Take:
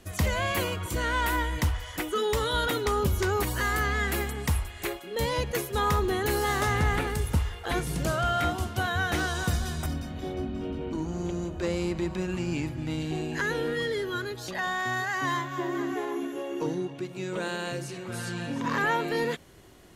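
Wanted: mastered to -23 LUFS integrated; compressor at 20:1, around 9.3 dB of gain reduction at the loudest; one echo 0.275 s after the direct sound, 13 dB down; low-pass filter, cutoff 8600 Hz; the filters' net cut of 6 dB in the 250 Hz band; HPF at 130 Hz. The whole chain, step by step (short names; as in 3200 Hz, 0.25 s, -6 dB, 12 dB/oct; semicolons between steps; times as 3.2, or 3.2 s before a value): HPF 130 Hz; LPF 8600 Hz; bell 250 Hz -9 dB; compressor 20:1, threshold -33 dBFS; echo 0.275 s -13 dB; gain +14.5 dB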